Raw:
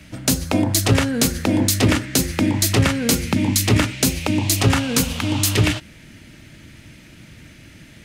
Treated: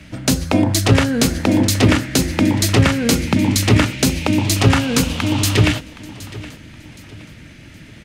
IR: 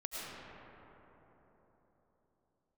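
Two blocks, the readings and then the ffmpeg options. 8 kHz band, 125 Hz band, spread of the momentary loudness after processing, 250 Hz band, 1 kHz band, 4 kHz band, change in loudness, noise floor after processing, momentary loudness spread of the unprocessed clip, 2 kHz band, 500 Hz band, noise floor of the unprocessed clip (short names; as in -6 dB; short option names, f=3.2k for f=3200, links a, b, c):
-1.0 dB, +3.5 dB, 15 LU, +3.5 dB, +3.5 dB, +2.0 dB, +2.5 dB, -41 dBFS, 4 LU, +3.0 dB, +3.5 dB, -45 dBFS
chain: -filter_complex "[0:a]highshelf=f=7.8k:g=-9.5,asplit=2[a][b];[b]aecho=0:1:769|1538|2307:0.126|0.0453|0.0163[c];[a][c]amix=inputs=2:normalize=0,volume=3.5dB"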